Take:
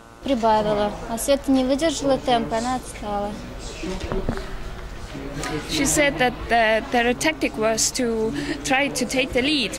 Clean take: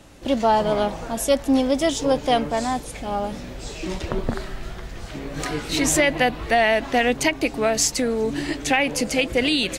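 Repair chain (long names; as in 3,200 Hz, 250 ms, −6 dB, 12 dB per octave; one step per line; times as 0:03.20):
hum removal 115.4 Hz, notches 13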